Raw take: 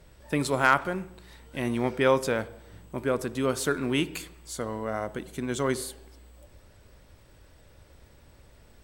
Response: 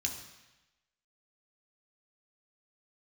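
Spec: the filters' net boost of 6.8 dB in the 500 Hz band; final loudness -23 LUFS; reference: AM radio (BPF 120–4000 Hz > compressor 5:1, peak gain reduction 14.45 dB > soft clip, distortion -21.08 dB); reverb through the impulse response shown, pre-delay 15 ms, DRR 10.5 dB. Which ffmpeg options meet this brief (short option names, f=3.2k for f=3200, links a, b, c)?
-filter_complex "[0:a]equalizer=f=500:t=o:g=8,asplit=2[a][b];[1:a]atrim=start_sample=2205,adelay=15[c];[b][c]afir=irnorm=-1:irlink=0,volume=-12.5dB[d];[a][d]amix=inputs=2:normalize=0,highpass=120,lowpass=4k,acompressor=threshold=-26dB:ratio=5,asoftclip=threshold=-18.5dB,volume=10dB"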